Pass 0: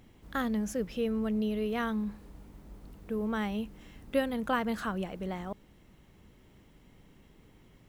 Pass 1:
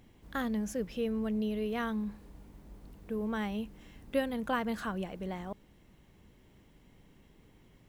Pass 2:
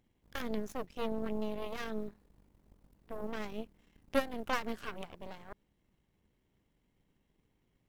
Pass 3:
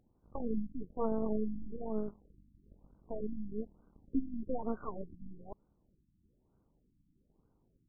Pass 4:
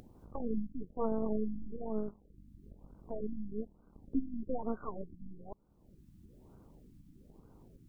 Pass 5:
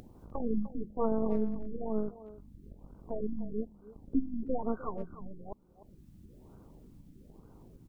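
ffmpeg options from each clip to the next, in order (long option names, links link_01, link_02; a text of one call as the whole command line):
ffmpeg -i in.wav -af "bandreject=frequency=1300:width=18,volume=-2dB" out.wav
ffmpeg -i in.wav -af "aeval=exprs='0.126*(cos(1*acos(clip(val(0)/0.126,-1,1)))-cos(1*PI/2))+0.02*(cos(3*acos(clip(val(0)/0.126,-1,1)))-cos(3*PI/2))+0.002*(cos(5*acos(clip(val(0)/0.126,-1,1)))-cos(5*PI/2))+0.0178*(cos(6*acos(clip(val(0)/0.126,-1,1)))-cos(6*PI/2))+0.00794*(cos(7*acos(clip(val(0)/0.126,-1,1)))-cos(7*PI/2))':channel_layout=same,volume=1dB" out.wav
ffmpeg -i in.wav -af "afftfilt=real='re*lt(b*sr/1024,300*pow(1600/300,0.5+0.5*sin(2*PI*1.1*pts/sr)))':imag='im*lt(b*sr/1024,300*pow(1600/300,0.5+0.5*sin(2*PI*1.1*pts/sr)))':win_size=1024:overlap=0.75,volume=3dB" out.wav
ffmpeg -i in.wav -af "acompressor=mode=upward:threshold=-43dB:ratio=2.5" out.wav
ffmpeg -i in.wav -filter_complex "[0:a]asplit=2[link_01][link_02];[link_02]adelay=300,highpass=300,lowpass=3400,asoftclip=type=hard:threshold=-29.5dB,volume=-13dB[link_03];[link_01][link_03]amix=inputs=2:normalize=0,volume=3.5dB" out.wav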